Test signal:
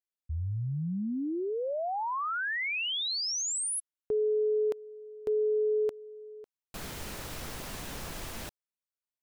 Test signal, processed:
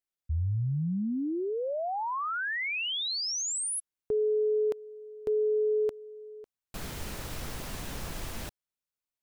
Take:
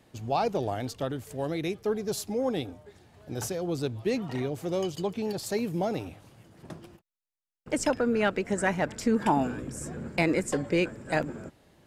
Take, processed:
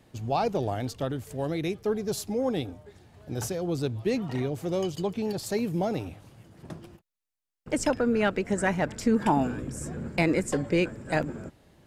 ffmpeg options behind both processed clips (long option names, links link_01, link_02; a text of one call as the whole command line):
ffmpeg -i in.wav -af "lowshelf=frequency=180:gain=5" out.wav